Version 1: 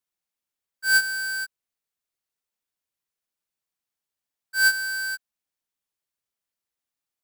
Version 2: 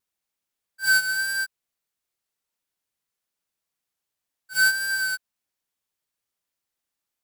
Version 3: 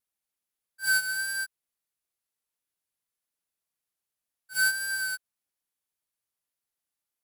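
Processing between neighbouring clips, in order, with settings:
vibrato 1.7 Hz 28 cents; pre-echo 41 ms -12 dB; compression, threshold -20 dBFS, peak gain reduction 4.5 dB; trim +3 dB
peaking EQ 11 kHz +7 dB 0.4 oct; trim -5.5 dB

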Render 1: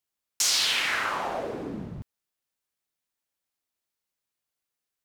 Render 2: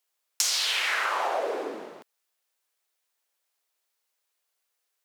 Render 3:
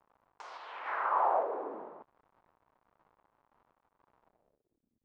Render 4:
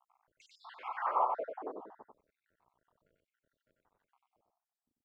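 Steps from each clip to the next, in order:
high-pass 410 Hz 24 dB/octave; compression 10:1, threshold -30 dBFS, peak gain reduction 10 dB; trim +7 dB
crackle 200 per s -43 dBFS; random-step tremolo; low-pass sweep 1 kHz -> 240 Hz, 4.19–4.93 s; trim -4.5 dB
random holes in the spectrogram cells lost 73%; delay 93 ms -5 dB

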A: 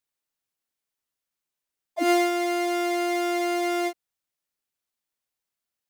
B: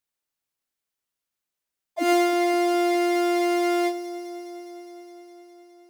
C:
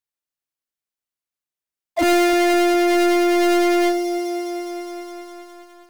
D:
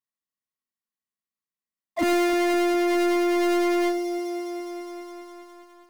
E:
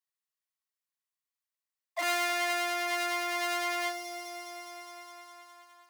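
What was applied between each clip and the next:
echo whose repeats swap between lows and highs 103 ms, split 1.8 kHz, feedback 88%, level -12 dB
waveshaping leveller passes 3
small resonant body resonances 210/1100/1900 Hz, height 13 dB, ringing for 45 ms; trim -7.5 dB
Bessel high-pass 940 Hz, order 4

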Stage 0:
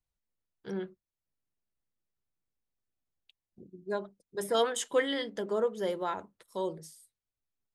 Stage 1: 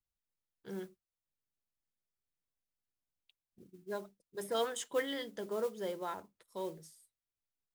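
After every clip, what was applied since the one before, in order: modulation noise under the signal 21 dB; trim -6.5 dB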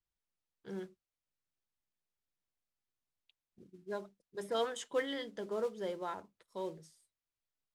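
distance through air 54 m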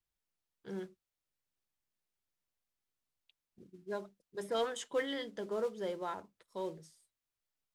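saturation -23 dBFS, distortion -24 dB; trim +1 dB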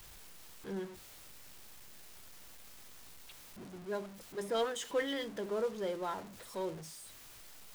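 jump at every zero crossing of -45.5 dBFS

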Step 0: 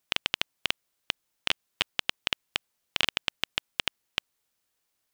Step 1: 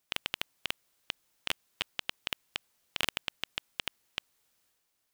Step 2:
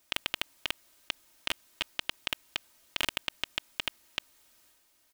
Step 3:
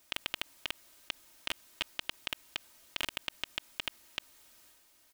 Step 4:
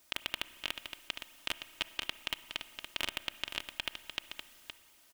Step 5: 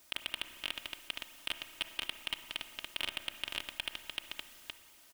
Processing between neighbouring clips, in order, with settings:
transient shaper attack -7 dB, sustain +5 dB
comb 3.2 ms, depth 50%; in parallel at +1.5 dB: compressor with a negative ratio -40 dBFS, ratio -1; on the sum: trim -2.5 dB
peak limiter -17 dBFS, peak gain reduction 10 dB; trim +3 dB
delay 517 ms -8 dB; on a send at -14.5 dB: reverberation RT60 2.0 s, pre-delay 31 ms
saturation -23 dBFS, distortion -9 dB; trim +3 dB

